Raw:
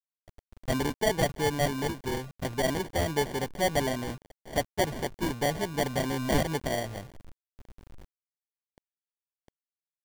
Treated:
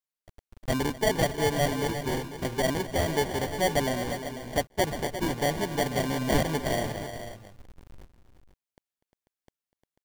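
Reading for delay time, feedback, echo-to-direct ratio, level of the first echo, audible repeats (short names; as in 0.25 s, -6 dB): 0.246 s, no steady repeat, -7.5 dB, -17.5 dB, 3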